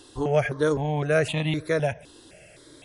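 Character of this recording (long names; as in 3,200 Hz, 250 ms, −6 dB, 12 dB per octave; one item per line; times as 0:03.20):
notches that jump at a steady rate 3.9 Hz 630–1,500 Hz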